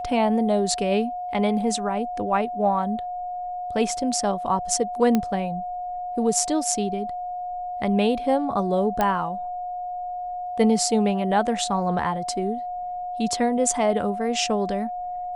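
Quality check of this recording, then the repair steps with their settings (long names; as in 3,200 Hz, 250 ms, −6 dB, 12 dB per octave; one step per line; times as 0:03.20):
whistle 720 Hz −28 dBFS
0:05.15: click −9 dBFS
0:09.01: click −9 dBFS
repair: click removal
notch filter 720 Hz, Q 30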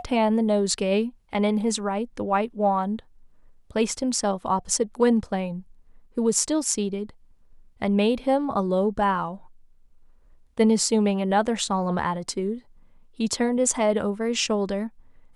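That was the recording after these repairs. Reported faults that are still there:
0:05.15: click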